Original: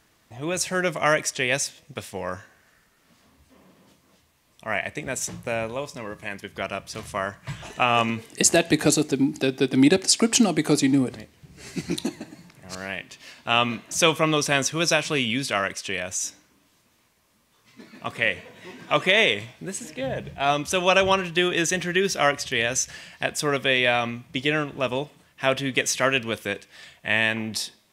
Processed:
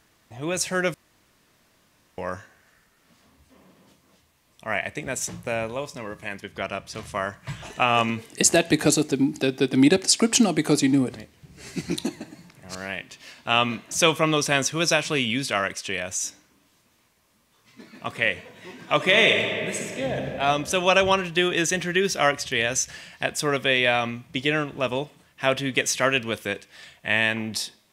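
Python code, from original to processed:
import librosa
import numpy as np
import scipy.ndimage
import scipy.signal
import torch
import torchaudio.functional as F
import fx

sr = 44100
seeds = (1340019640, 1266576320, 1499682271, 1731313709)

y = fx.high_shelf(x, sr, hz=9600.0, db=-6.5, at=(6.38, 7.13))
y = fx.reverb_throw(y, sr, start_s=18.96, length_s=1.37, rt60_s=2.5, drr_db=2.0)
y = fx.edit(y, sr, fx.room_tone_fill(start_s=0.94, length_s=1.24), tone=tone)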